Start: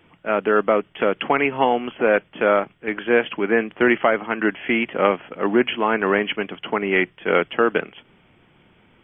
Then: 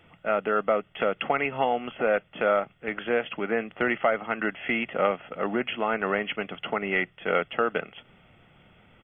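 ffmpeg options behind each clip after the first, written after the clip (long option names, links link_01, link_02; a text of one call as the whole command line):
ffmpeg -i in.wav -af "acompressor=threshold=-29dB:ratio=1.5,aecho=1:1:1.5:0.43,volume=-1.5dB" out.wav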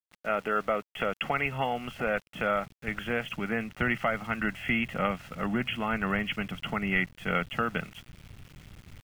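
ffmpeg -i in.wav -af "asubboost=boost=7.5:cutoff=140,aeval=exprs='val(0)*gte(abs(val(0)),0.00473)':channel_layout=same,equalizer=frequency=550:width=0.66:gain=-5" out.wav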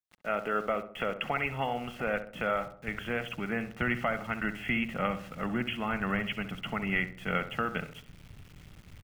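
ffmpeg -i in.wav -filter_complex "[0:a]asplit=2[link_01][link_02];[link_02]adelay=66,lowpass=frequency=1300:poles=1,volume=-9.5dB,asplit=2[link_03][link_04];[link_04]adelay=66,lowpass=frequency=1300:poles=1,volume=0.5,asplit=2[link_05][link_06];[link_06]adelay=66,lowpass=frequency=1300:poles=1,volume=0.5,asplit=2[link_07][link_08];[link_08]adelay=66,lowpass=frequency=1300:poles=1,volume=0.5,asplit=2[link_09][link_10];[link_10]adelay=66,lowpass=frequency=1300:poles=1,volume=0.5,asplit=2[link_11][link_12];[link_12]adelay=66,lowpass=frequency=1300:poles=1,volume=0.5[link_13];[link_01][link_03][link_05][link_07][link_09][link_11][link_13]amix=inputs=7:normalize=0,volume=-2.5dB" out.wav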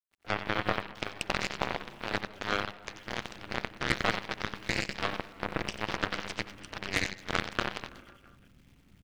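ffmpeg -i in.wav -af "aecho=1:1:90|198|327.6|483.1|669.7:0.631|0.398|0.251|0.158|0.1,aeval=exprs='val(0)*sin(2*PI*100*n/s)':channel_layout=same,aeval=exprs='0.2*(cos(1*acos(clip(val(0)/0.2,-1,1)))-cos(1*PI/2))+0.0316*(cos(4*acos(clip(val(0)/0.2,-1,1)))-cos(4*PI/2))+0.0355*(cos(7*acos(clip(val(0)/0.2,-1,1)))-cos(7*PI/2))':channel_layout=same,volume=4dB" out.wav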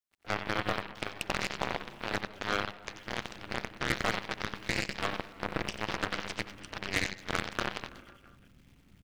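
ffmpeg -i in.wav -af "volume=15.5dB,asoftclip=hard,volume=-15.5dB" out.wav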